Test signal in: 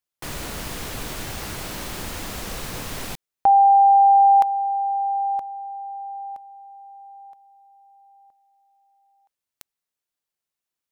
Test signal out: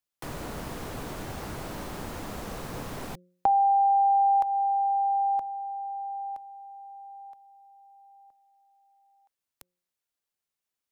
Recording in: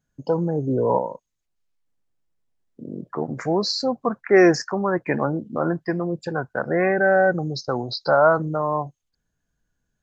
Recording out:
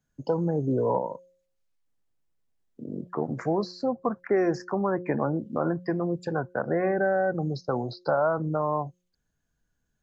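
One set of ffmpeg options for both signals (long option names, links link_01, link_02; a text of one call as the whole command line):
ffmpeg -i in.wav -filter_complex "[0:a]acrossover=split=96|1400[link_01][link_02][link_03];[link_01]acompressor=threshold=-40dB:ratio=4[link_04];[link_02]acompressor=threshold=-20dB:ratio=4[link_05];[link_03]acompressor=threshold=-45dB:ratio=4[link_06];[link_04][link_05][link_06]amix=inputs=3:normalize=0,bandreject=frequency=178.9:width_type=h:width=4,bandreject=frequency=357.8:width_type=h:width=4,bandreject=frequency=536.7:width_type=h:width=4,volume=-1.5dB" out.wav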